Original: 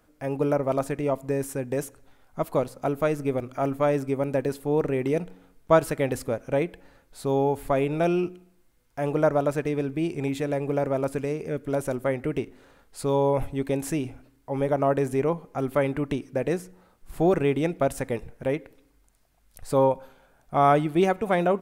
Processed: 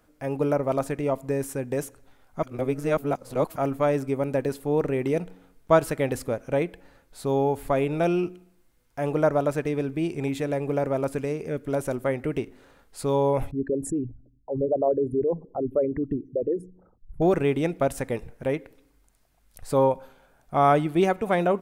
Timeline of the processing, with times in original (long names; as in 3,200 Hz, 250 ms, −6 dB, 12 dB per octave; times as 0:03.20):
0:02.43–0:03.56: reverse
0:13.51–0:17.22: spectral envelope exaggerated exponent 3